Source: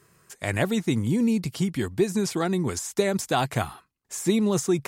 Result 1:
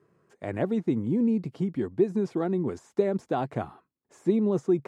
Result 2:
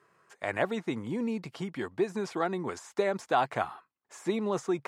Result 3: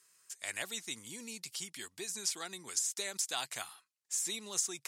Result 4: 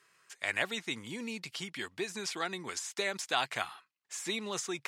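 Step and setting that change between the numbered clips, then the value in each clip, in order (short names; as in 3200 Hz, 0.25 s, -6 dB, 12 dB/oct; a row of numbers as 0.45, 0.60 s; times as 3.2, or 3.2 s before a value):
band-pass, frequency: 350, 930, 7100, 2700 Hz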